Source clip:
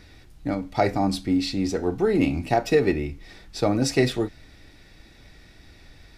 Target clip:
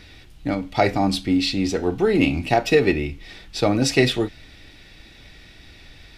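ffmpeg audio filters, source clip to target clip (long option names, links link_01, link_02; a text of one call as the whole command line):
ffmpeg -i in.wav -af "equalizer=frequency=3000:width_type=o:width=0.94:gain=8,volume=2.5dB" out.wav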